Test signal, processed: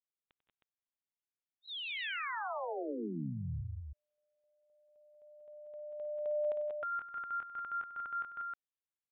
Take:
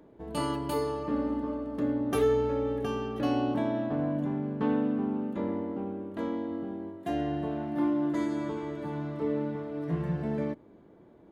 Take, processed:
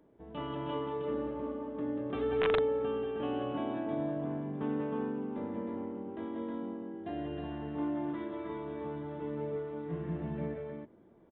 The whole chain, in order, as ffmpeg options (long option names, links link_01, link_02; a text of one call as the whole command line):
ffmpeg -i in.wav -af "aecho=1:1:95|164|180|189|314:0.2|0.133|0.355|0.596|0.668,aresample=8000,aeval=exprs='(mod(5.01*val(0)+1,2)-1)/5.01':channel_layout=same,aresample=44100,volume=-8.5dB" out.wav